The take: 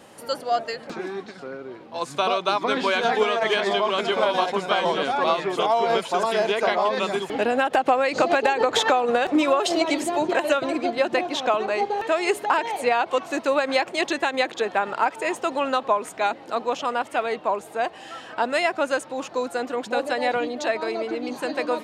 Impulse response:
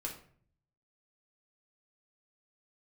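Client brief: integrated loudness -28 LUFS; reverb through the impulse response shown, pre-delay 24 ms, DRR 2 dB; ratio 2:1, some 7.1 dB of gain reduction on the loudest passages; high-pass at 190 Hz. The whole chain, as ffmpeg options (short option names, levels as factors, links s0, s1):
-filter_complex "[0:a]highpass=190,acompressor=threshold=0.0355:ratio=2,asplit=2[s0][s1];[1:a]atrim=start_sample=2205,adelay=24[s2];[s1][s2]afir=irnorm=-1:irlink=0,volume=0.794[s3];[s0][s3]amix=inputs=2:normalize=0,volume=0.891"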